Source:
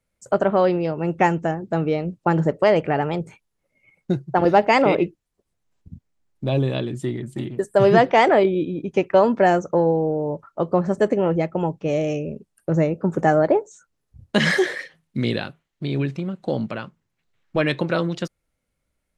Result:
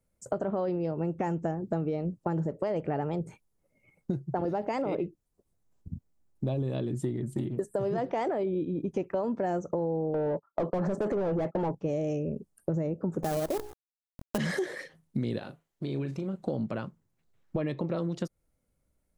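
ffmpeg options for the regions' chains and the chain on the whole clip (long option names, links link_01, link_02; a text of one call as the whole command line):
ffmpeg -i in.wav -filter_complex "[0:a]asettb=1/sr,asplit=3[link_01][link_02][link_03];[link_01]atrim=end=10.144[link_04];[link_02]atrim=start=10.14:end=11.75,asetpts=PTS-STARTPTS,afade=type=in:duration=0.004:curve=qsin,afade=type=out:start_time=1.606:duration=0.004:curve=qsin,agate=range=-30dB:threshold=-36dB:ratio=16:release=100:detection=peak,asplit=2[link_05][link_06];[link_06]highpass=frequency=720:poles=1,volume=26dB,asoftclip=type=tanh:threshold=-6.5dB[link_07];[link_05][link_07]amix=inputs=2:normalize=0,lowpass=frequency=1700:poles=1,volume=-6dB[link_08];[link_03]atrim=start=11.746[link_09];[link_04][link_08]acrossfade=duration=0.004:curve1=hsin:curve2=qsin[link_10];[link_10][link_09]acrossfade=duration=0.004:curve1=qsin:curve2=hsin,asettb=1/sr,asplit=3[link_11][link_12][link_13];[link_11]atrim=end=13.234[link_14];[link_12]atrim=start=13.23:end=14.38,asetpts=PTS-STARTPTS,afade=type=in:duration=0.004:curve=qsin,afade=type=out:start_time=1.146:duration=0.004:curve=qsin,lowpass=frequency=3400:width=0.5412,lowpass=frequency=3400:width=1.3066,bandreject=frequency=60:width_type=h:width=6,bandreject=frequency=120:width_type=h:width=6,bandreject=frequency=180:width_type=h:width=6,bandreject=frequency=240:width_type=h:width=6,bandreject=frequency=300:width_type=h:width=6,bandreject=frequency=360:width_type=h:width=6,bandreject=frequency=420:width_type=h:width=6,acrusher=bits=4:dc=4:mix=0:aa=0.000001[link_15];[link_13]atrim=start=14.376[link_16];[link_14][link_15]acrossfade=duration=0.004:curve1=hsin:curve2=qsin[link_17];[link_17][link_16]acrossfade=duration=0.004:curve1=qsin:curve2=hsin,asettb=1/sr,asplit=3[link_18][link_19][link_20];[link_18]atrim=end=15.384[link_21];[link_19]atrim=start=15.38:end=16.36,asetpts=PTS-STARTPTS,afade=type=in:duration=0.004:curve=qsin,afade=type=out:start_time=0.976:duration=0.004:curve=qsin,bass=frequency=250:gain=-7,treble=frequency=4000:gain=1,acompressor=threshold=-31dB:ratio=2:attack=3.2:release=140:knee=1:detection=peak,asplit=2[link_22][link_23];[link_23]adelay=37,volume=-10dB[link_24];[link_22][link_24]amix=inputs=2:normalize=0,atrim=end_sample=43218[link_25];[link_20]atrim=start=16.356[link_26];[link_21][link_25]acrossfade=duration=0.004:curve1=hsin:curve2=qsin[link_27];[link_27][link_26]acrossfade=duration=0.004:curve1=qsin:curve2=hsin,asettb=1/sr,asplit=3[link_28][link_29][link_30];[link_28]atrim=end=17.564[link_31];[link_29]atrim=start=17.56:end=17.97,asetpts=PTS-STARTPTS,afade=type=in:duration=0.004:curve=qsin,afade=type=out:start_time=0.406:duration=0.004:curve=qsin,aemphasis=mode=reproduction:type=50kf,bandreject=frequency=1500:width=6.4[link_32];[link_30]atrim=start=17.966[link_33];[link_31][link_32]acrossfade=duration=0.004:curve1=hsin:curve2=qsin[link_34];[link_34][link_33]acrossfade=duration=0.004:curve1=qsin:curve2=hsin,equalizer=frequency=2600:width=0.49:gain=-10.5,alimiter=limit=-15dB:level=0:latency=1:release=18,acompressor=threshold=-29dB:ratio=6,volume=1.5dB" out.wav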